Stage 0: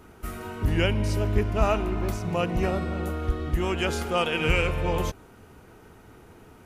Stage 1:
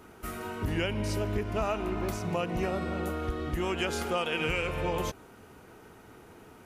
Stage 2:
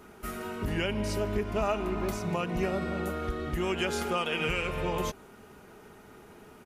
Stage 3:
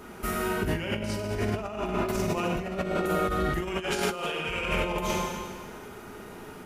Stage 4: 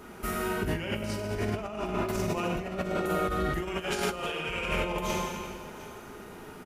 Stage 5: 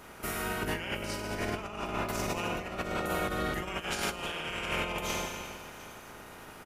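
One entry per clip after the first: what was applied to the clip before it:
low-shelf EQ 110 Hz −9.5 dB; downward compressor, threshold −26 dBFS, peak gain reduction 7 dB
comb filter 4.9 ms, depth 34%
four-comb reverb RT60 1.6 s, combs from 33 ms, DRR 0.5 dB; compressor whose output falls as the input rises −31 dBFS, ratio −0.5; level +3 dB
single-tap delay 710 ms −17 dB; level −2 dB
ceiling on every frequency bin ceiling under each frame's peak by 13 dB; level −3 dB

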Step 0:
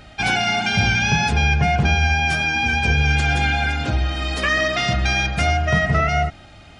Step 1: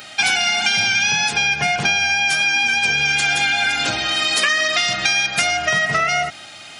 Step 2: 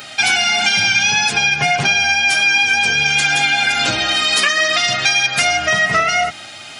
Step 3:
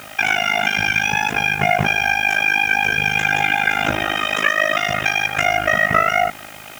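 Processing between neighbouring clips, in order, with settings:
high-pass filter 100 Hz 24 dB per octave; spectral tilt +4 dB per octave; downward compressor, threshold −20 dBFS, peak gain reduction 8.5 dB; level +5.5 dB
in parallel at −3 dB: brickwall limiter −11 dBFS, peak gain reduction 7 dB; on the sum: flanger 0.58 Hz, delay 7.1 ms, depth 3.8 ms, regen −36%; level +3 dB
moving average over 10 samples; amplitude modulation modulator 52 Hz, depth 95%; in parallel at −10 dB: bit-depth reduction 6 bits, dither triangular; on the sum: level +3 dB

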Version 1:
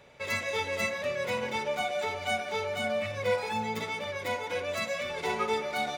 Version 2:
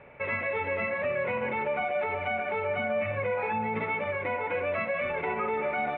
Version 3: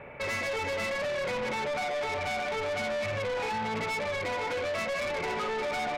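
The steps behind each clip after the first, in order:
elliptic low-pass filter 2,500 Hz, stop band 70 dB; brickwall limiter −27 dBFS, peak gain reduction 9 dB; level +5.5 dB
soft clipping −35.5 dBFS, distortion −8 dB; level +6 dB

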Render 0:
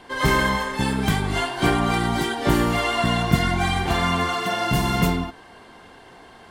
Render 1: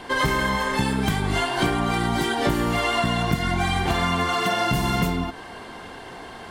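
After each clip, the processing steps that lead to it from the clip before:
downward compressor 6 to 1, threshold −27 dBFS, peak gain reduction 15 dB
level +7.5 dB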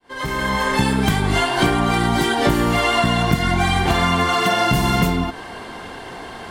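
fade in at the beginning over 0.67 s
level +5 dB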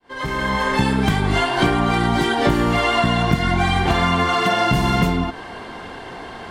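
high-shelf EQ 8,200 Hz −12 dB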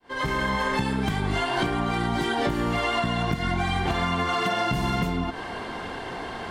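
downward compressor, threshold −22 dBFS, peak gain reduction 11 dB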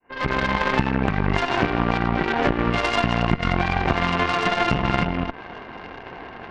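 linear-phase brick-wall low-pass 3,000 Hz
harmonic generator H 2 −8 dB, 3 −18 dB, 7 −25 dB, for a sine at −13 dBFS
level +6.5 dB

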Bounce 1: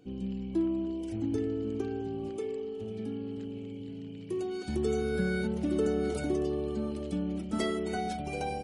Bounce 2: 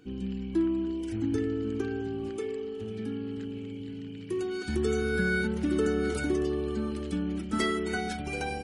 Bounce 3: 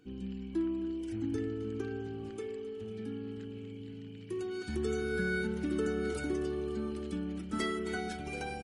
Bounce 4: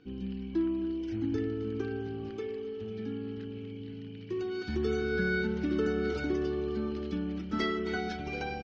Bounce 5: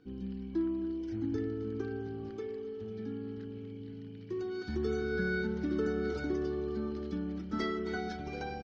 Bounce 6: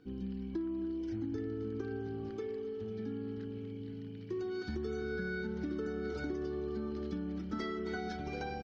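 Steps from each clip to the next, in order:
graphic EQ with 15 bands 160 Hz −5 dB, 630 Hz −10 dB, 1,600 Hz +7 dB; level +4 dB
repeating echo 265 ms, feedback 40%, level −16 dB; on a send at −23 dB: convolution reverb RT60 1.5 s, pre-delay 58 ms; on the sum: level −6 dB
Butterworth low-pass 5,800 Hz 48 dB per octave; level +3 dB
parametric band 2,700 Hz −8.5 dB 0.6 octaves; level −2.5 dB
downward compressor, threshold −35 dBFS, peak gain reduction 7.5 dB; level +1 dB

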